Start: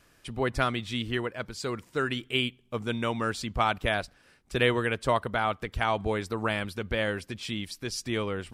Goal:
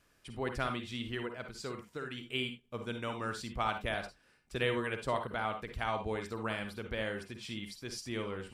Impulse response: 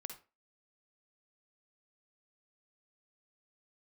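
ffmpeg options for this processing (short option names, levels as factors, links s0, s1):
-filter_complex "[0:a]asettb=1/sr,asplit=3[s0][s1][s2];[s0]atrim=end=1.684[s3];[s1]atrim=start=1.68:end=2.18,asetpts=PTS-STARTPTS,afade=t=in:d=0.004:c=qsin,afade=t=out:st=0.496:d=0.004:c=qsin,acompressor=threshold=0.0355:ratio=6[s4];[s2]atrim=start=2.176[s5];[s3][s4]acrossfade=d=0.004:c1=hsin:c2=qsin[s6];[s6][s5]acrossfade=d=0.004:c1=qsin:c2=hsin[s7];[1:a]atrim=start_sample=2205,afade=t=out:st=0.15:d=0.01,atrim=end_sample=7056[s8];[s7][s8]afir=irnorm=-1:irlink=0,volume=0.631"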